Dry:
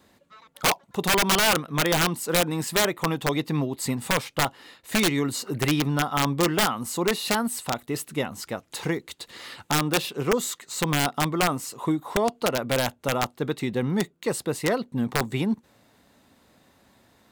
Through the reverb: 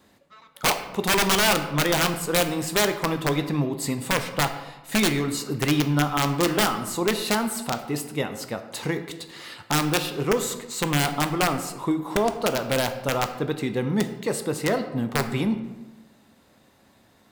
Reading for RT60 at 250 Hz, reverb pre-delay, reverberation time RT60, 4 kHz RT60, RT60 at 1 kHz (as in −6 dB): 1.2 s, 9 ms, 1.1 s, 0.65 s, 1.1 s